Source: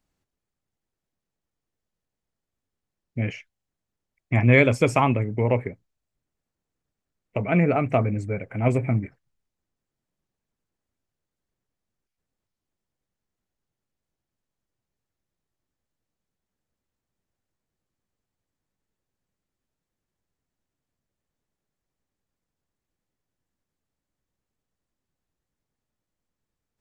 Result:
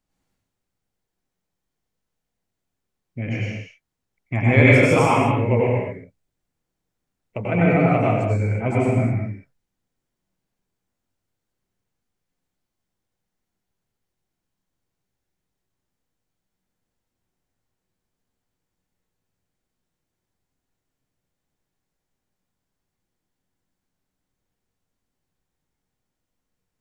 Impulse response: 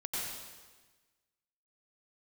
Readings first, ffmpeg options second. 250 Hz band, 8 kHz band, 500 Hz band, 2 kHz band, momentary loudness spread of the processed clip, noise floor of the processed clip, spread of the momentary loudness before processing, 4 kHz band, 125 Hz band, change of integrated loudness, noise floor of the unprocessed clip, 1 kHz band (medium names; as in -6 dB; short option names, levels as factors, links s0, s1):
+4.0 dB, no reading, +4.0 dB, +4.5 dB, 18 LU, -82 dBFS, 16 LU, +4.0 dB, +4.0 dB, +3.5 dB, under -85 dBFS, +4.5 dB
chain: -filter_complex "[1:a]atrim=start_sample=2205,afade=t=out:st=0.42:d=0.01,atrim=end_sample=18963[s0];[0:a][s0]afir=irnorm=-1:irlink=0,volume=1.12"